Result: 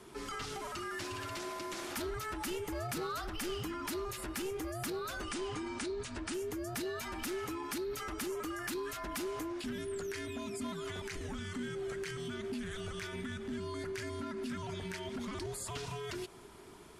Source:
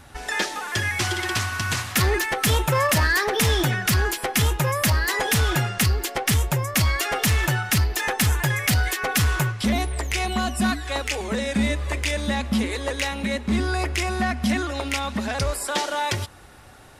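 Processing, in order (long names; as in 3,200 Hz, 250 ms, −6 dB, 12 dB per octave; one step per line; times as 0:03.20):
brickwall limiter −26.5 dBFS, peak gain reduction 12 dB
frequency shifter −460 Hz
0:05.23–0:06.34: linear-phase brick-wall low-pass 10,000 Hz
level −6.5 dB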